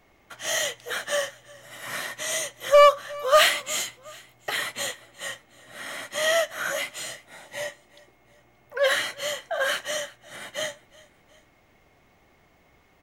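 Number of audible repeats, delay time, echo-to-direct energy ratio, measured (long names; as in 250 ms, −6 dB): 2, 364 ms, −21.5 dB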